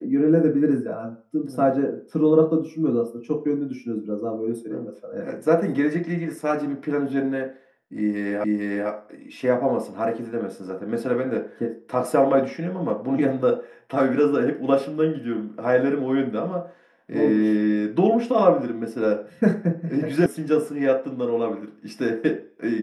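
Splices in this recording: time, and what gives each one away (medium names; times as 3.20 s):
8.44 s: repeat of the last 0.45 s
20.26 s: sound stops dead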